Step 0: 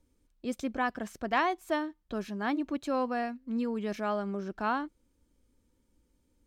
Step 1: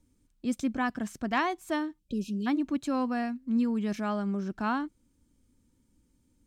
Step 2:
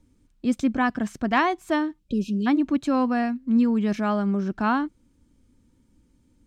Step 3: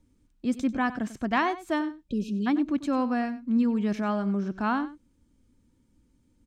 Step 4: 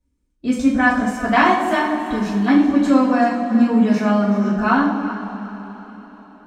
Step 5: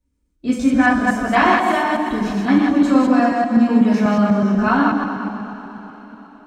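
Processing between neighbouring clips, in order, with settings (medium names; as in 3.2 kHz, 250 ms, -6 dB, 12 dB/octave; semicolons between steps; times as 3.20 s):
ten-band graphic EQ 125 Hz +7 dB, 250 Hz +5 dB, 500 Hz -5 dB, 8 kHz +5 dB; spectral selection erased 1.99–2.47 s, 600–2400 Hz
treble shelf 6.7 kHz -10.5 dB; trim +7 dB
delay 95 ms -15 dB; trim -4 dB
echo whose repeats swap between lows and highs 190 ms, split 810 Hz, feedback 52%, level -7 dB; spectral noise reduction 16 dB; two-slope reverb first 0.42 s, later 4.5 s, from -18 dB, DRR -7.5 dB; trim +3 dB
chunks repeated in reverse 123 ms, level -2.5 dB; trim -1 dB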